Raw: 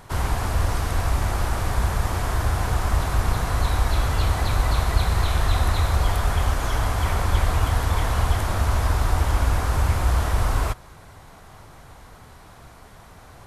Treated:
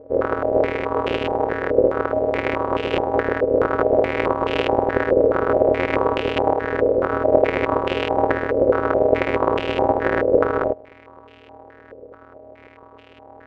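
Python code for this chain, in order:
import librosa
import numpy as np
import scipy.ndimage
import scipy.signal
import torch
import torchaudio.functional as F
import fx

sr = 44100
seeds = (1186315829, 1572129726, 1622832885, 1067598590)

y = np.r_[np.sort(x[:len(x) // 256 * 256].reshape(-1, 256), axis=1).ravel(), x[len(x) // 256 * 256:]]
y = y * np.sin(2.0 * np.pi * 450.0 * np.arange(len(y)) / sr)
y = fx.filter_held_lowpass(y, sr, hz=4.7, low_hz=520.0, high_hz=2800.0)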